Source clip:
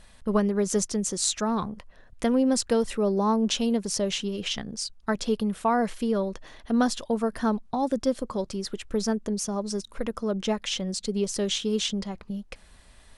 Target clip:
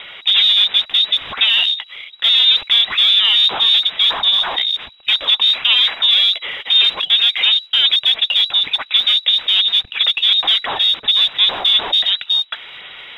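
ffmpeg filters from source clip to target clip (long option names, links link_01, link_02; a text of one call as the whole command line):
ffmpeg -i in.wav -filter_complex "[0:a]asplit=2[link_01][link_02];[link_02]highpass=frequency=720:poles=1,volume=35dB,asoftclip=type=tanh:threshold=-7.5dB[link_03];[link_01][link_03]amix=inputs=2:normalize=0,lowpass=frequency=1200:poles=1,volume=-6dB,lowpass=frequency=3300:width_type=q:width=0.5098,lowpass=frequency=3300:width_type=q:width=0.6013,lowpass=frequency=3300:width_type=q:width=0.9,lowpass=frequency=3300:width_type=q:width=2.563,afreqshift=-3900,aphaser=in_gain=1:out_gain=1:delay=4.7:decay=0.26:speed=1.4:type=sinusoidal,volume=2dB" out.wav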